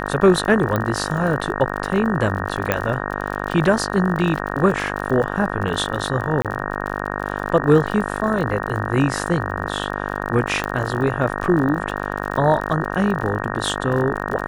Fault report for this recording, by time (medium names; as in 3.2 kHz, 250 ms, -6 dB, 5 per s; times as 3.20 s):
buzz 50 Hz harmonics 37 -26 dBFS
crackle 43 per s -27 dBFS
0.76 s: pop -8 dBFS
2.72 s: pop -4 dBFS
6.42–6.45 s: dropout 27 ms
10.64 s: pop -10 dBFS